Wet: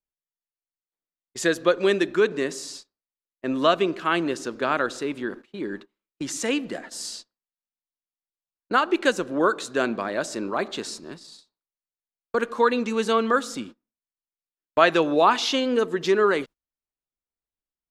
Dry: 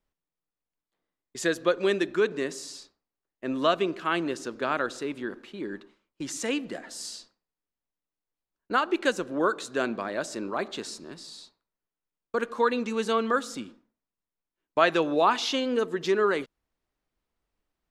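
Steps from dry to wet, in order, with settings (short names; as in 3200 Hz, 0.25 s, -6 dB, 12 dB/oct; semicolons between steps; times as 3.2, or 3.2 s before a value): gate -43 dBFS, range -21 dB; gain +4 dB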